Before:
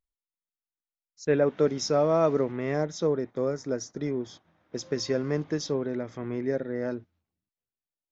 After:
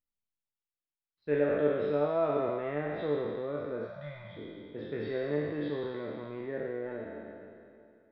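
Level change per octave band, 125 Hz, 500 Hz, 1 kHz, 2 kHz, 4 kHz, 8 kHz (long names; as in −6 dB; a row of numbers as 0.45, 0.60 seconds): −7.5 dB, −4.0 dB, −4.0 dB, −2.0 dB, −13.0 dB, can't be measured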